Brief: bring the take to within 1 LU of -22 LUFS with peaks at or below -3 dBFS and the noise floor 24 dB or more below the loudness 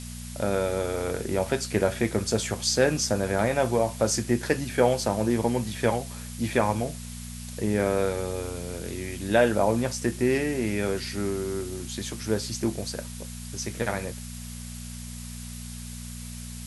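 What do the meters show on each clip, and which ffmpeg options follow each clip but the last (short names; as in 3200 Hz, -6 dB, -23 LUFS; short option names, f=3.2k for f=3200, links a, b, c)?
hum 60 Hz; harmonics up to 240 Hz; hum level -37 dBFS; noise floor -38 dBFS; noise floor target -51 dBFS; loudness -27.0 LUFS; peak -7.5 dBFS; loudness target -22.0 LUFS
-> -af "bandreject=f=60:t=h:w=4,bandreject=f=120:t=h:w=4,bandreject=f=180:t=h:w=4,bandreject=f=240:t=h:w=4"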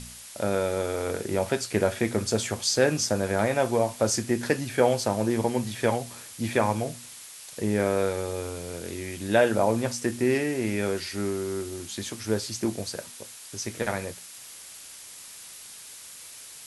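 hum none; noise floor -45 dBFS; noise floor target -51 dBFS
-> -af "afftdn=nr=6:nf=-45"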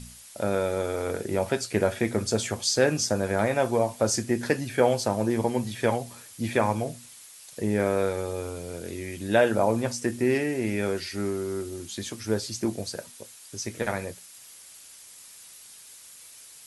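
noise floor -49 dBFS; noise floor target -51 dBFS
-> -af "afftdn=nr=6:nf=-49"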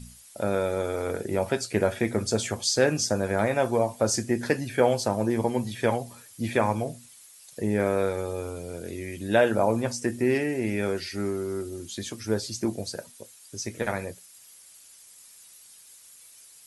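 noise floor -52 dBFS; loudness -27.0 LUFS; peak -7.0 dBFS; loudness target -22.0 LUFS
-> -af "volume=5dB,alimiter=limit=-3dB:level=0:latency=1"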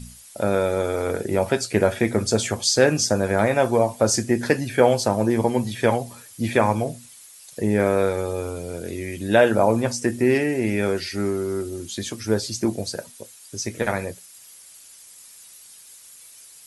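loudness -22.0 LUFS; peak -3.0 dBFS; noise floor -47 dBFS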